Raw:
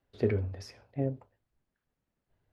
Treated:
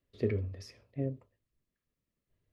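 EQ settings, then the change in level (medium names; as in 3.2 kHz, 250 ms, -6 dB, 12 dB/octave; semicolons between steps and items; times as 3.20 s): peaking EQ 810 Hz -14.5 dB 0.42 oct; band-stop 1.5 kHz, Q 5.4; -2.5 dB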